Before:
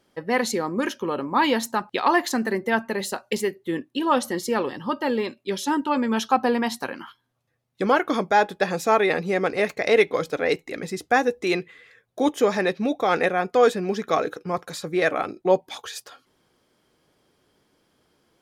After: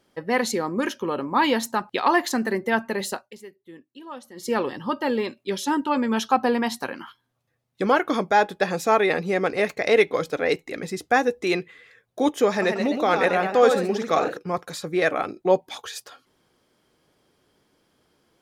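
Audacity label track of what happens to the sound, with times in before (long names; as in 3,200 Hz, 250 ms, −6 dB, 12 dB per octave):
3.130000	4.510000	duck −17.5 dB, fades 0.16 s
12.480000	14.370000	delay with pitch and tempo change per echo 138 ms, each echo +1 semitone, echoes 2, each echo −6 dB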